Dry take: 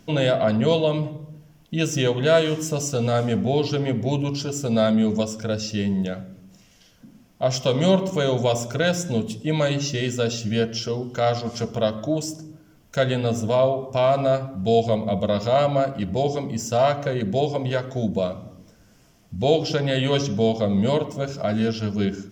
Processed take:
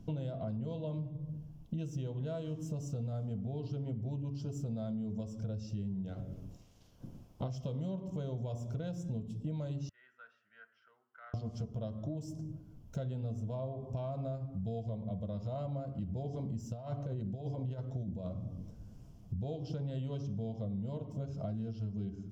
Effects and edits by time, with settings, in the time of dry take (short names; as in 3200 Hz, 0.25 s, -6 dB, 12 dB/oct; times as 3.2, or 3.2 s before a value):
6.07–7.49 spectral limiter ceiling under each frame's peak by 15 dB
9.89–11.34 Butterworth band-pass 1600 Hz, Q 2.9
16.33–19.43 negative-ratio compressor -25 dBFS
whole clip: EQ curve 100 Hz 0 dB, 380 Hz -13 dB, 980 Hz -16 dB, 1900 Hz -28 dB, 3000 Hz -22 dB; compressor 8:1, threshold -41 dBFS; gain +5.5 dB